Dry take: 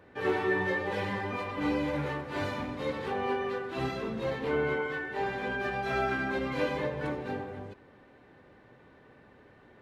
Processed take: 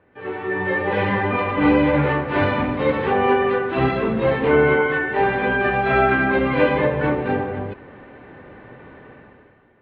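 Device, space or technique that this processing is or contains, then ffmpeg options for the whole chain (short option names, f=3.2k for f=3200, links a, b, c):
action camera in a waterproof case: -af "lowpass=f=3k:w=0.5412,lowpass=f=3k:w=1.3066,dynaudnorm=f=130:g=11:m=17dB,volume=-2dB" -ar 16000 -c:a aac -b:a 64k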